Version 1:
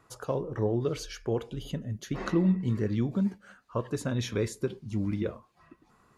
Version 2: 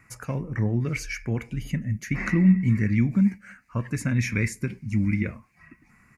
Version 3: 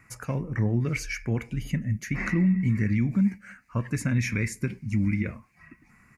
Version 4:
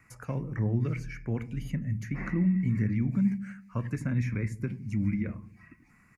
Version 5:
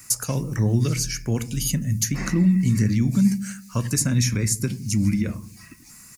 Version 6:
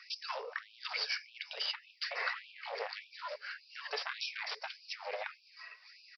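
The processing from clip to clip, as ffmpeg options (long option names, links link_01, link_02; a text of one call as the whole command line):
ffmpeg -i in.wav -af "firequalizer=gain_entry='entry(230,0);entry(400,-15);entry(630,-12);entry(1200,-8);entry(2200,12);entry(3300,-18);entry(5100,-4);entry(8200,-2)':delay=0.05:min_phase=1,volume=7.5dB" out.wav
ffmpeg -i in.wav -af "alimiter=limit=-16dB:level=0:latency=1:release=85" out.wav
ffmpeg -i in.wav -filter_complex "[0:a]acrossover=split=320|1700[link_01][link_02][link_03];[link_01]aecho=1:1:82|164|246|328|410|492:0.398|0.203|0.104|0.0528|0.0269|0.0137[link_04];[link_03]acompressor=threshold=-48dB:ratio=5[link_05];[link_04][link_02][link_05]amix=inputs=3:normalize=0,volume=-4dB" out.wav
ffmpeg -i in.wav -af "aexciter=amount=14.1:drive=3.4:freq=3300,volume=7.5dB" out.wav
ffmpeg -i in.wav -af "volume=22.5dB,asoftclip=hard,volume=-22.5dB,aresample=11025,aresample=44100,afftfilt=real='re*gte(b*sr/1024,400*pow(2400/400,0.5+0.5*sin(2*PI*1.7*pts/sr)))':imag='im*gte(b*sr/1024,400*pow(2400/400,0.5+0.5*sin(2*PI*1.7*pts/sr)))':win_size=1024:overlap=0.75" out.wav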